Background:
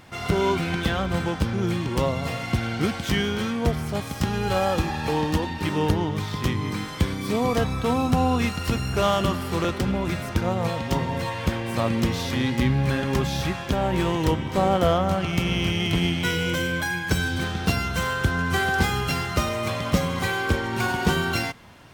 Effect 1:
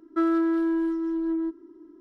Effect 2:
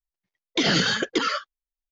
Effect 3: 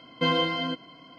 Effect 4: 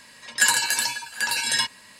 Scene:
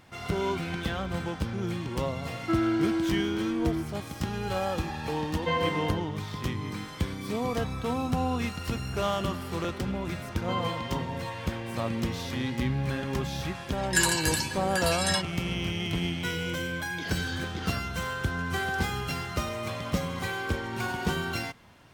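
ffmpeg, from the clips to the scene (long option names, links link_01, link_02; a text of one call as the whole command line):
ffmpeg -i bed.wav -i cue0.wav -i cue1.wav -i cue2.wav -i cue3.wav -filter_complex "[3:a]asplit=2[link_01][link_02];[0:a]volume=-7dB[link_03];[link_01]aecho=1:1:1.8:0.69[link_04];[link_02]equalizer=frequency=1100:width=6.7:gain=12[link_05];[2:a]alimiter=limit=-16dB:level=0:latency=1:release=71[link_06];[1:a]atrim=end=2,asetpts=PTS-STARTPTS,volume=-3.5dB,afade=type=in:duration=0.004:curve=hsin,afade=type=out:start_time=1.996:duration=0.004:curve=hsin,adelay=2320[link_07];[link_04]atrim=end=1.18,asetpts=PTS-STARTPTS,volume=-5dB,afade=type=in:duration=0.004:curve=hsin,afade=type=out:start_time=1.176:duration=0.004:curve=hsin,adelay=231525S[link_08];[link_05]atrim=end=1.18,asetpts=PTS-STARTPTS,volume=-12dB,afade=type=in:duration=0.004:curve=hsin,afade=type=out:start_time=1.176:duration=0.004:curve=hsin,adelay=10270[link_09];[4:a]atrim=end=1.99,asetpts=PTS-STARTPTS,volume=-5.5dB,afade=type=in:duration=0.004:curve=hsin,afade=type=out:start_time=1.986:duration=0.004:curve=hsin,adelay=13550[link_10];[link_06]atrim=end=1.91,asetpts=PTS-STARTPTS,volume=-14.5dB,afade=type=in:duration=0.004:curve=hsin,afade=type=out:start_time=1.906:duration=0.004:curve=hsin,adelay=16410[link_11];[link_03][link_07][link_08][link_09][link_10][link_11]amix=inputs=6:normalize=0" out.wav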